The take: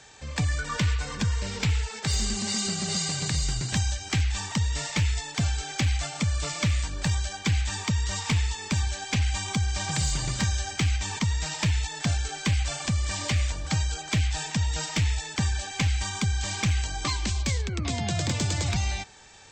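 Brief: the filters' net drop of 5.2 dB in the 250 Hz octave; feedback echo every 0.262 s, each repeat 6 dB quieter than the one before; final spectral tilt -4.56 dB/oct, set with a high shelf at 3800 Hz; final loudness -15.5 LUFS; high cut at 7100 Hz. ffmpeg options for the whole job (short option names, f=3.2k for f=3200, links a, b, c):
-af "lowpass=7.1k,equalizer=f=250:t=o:g=-8.5,highshelf=f=3.8k:g=-8.5,aecho=1:1:262|524|786|1048|1310|1572:0.501|0.251|0.125|0.0626|0.0313|0.0157,volume=13dB"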